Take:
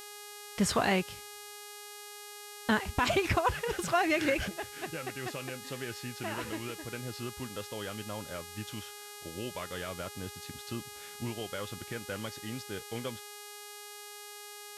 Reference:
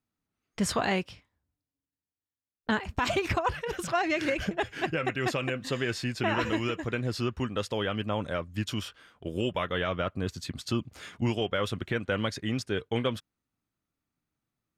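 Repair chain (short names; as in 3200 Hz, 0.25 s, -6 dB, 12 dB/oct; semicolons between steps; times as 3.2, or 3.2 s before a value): de-hum 413.5 Hz, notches 32; gain 0 dB, from 4.48 s +9.5 dB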